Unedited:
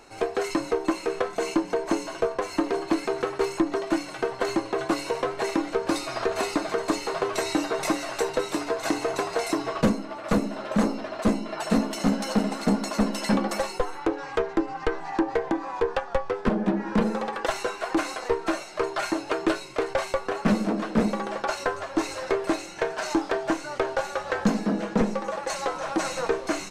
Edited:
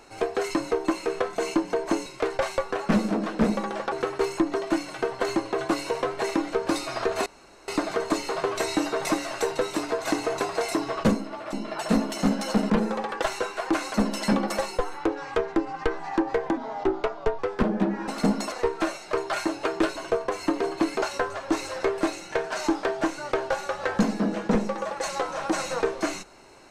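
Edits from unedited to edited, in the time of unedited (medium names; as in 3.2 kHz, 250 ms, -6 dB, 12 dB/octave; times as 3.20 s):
2.06–3.12 s: swap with 19.62–21.48 s
6.46 s: insert room tone 0.42 s
10.31–11.34 s: delete
12.51–12.95 s: swap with 16.94–18.18 s
15.58–16.25 s: speed 82%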